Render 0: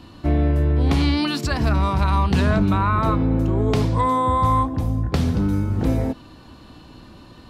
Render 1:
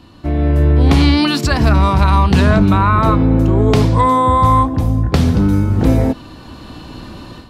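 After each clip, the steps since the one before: AGC gain up to 12 dB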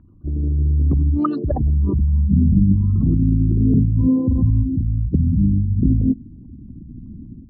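formant sharpening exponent 3; low-pass sweep 1500 Hz -> 240 Hz, 1.18–2.11; gain -6 dB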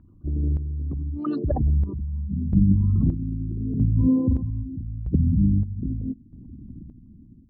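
chopper 0.79 Hz, depth 65%, duty 45%; gain -3 dB

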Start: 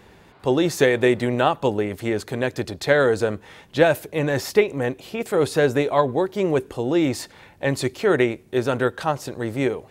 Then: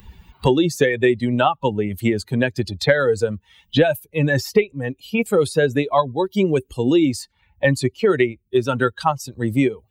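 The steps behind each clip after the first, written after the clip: per-bin expansion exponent 2; three-band squash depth 100%; gain +6.5 dB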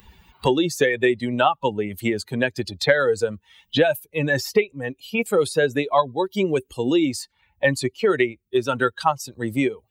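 low shelf 240 Hz -9.5 dB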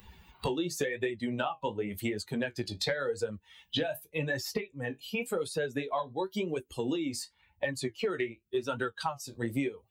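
compressor, threshold -25 dBFS, peak gain reduction 13 dB; flange 0.91 Hz, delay 9.5 ms, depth 9.7 ms, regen -42%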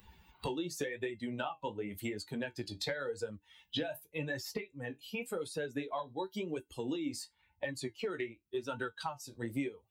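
resonator 300 Hz, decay 0.16 s, harmonics odd, mix 60%; gain +1.5 dB

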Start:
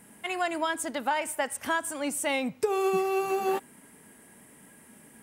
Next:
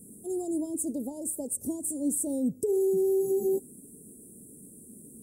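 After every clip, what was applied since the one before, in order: elliptic band-stop 410–8100 Hz, stop band 70 dB; limiter -26.5 dBFS, peak gain reduction 9 dB; gain +6 dB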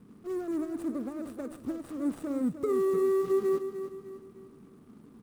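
median filter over 41 samples; bell 1200 Hz +10 dB 0.24 oct; feedback echo 0.303 s, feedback 41%, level -10 dB; gain -1 dB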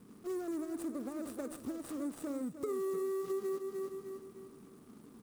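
compressor 4:1, threshold -35 dBFS, peak gain reduction 10 dB; tone controls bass -5 dB, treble +7 dB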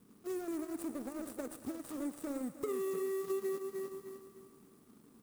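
G.711 law mismatch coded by A; high shelf 10000 Hz +6 dB; thinning echo 0.114 s, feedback 80%, high-pass 480 Hz, level -15 dB; gain +2 dB

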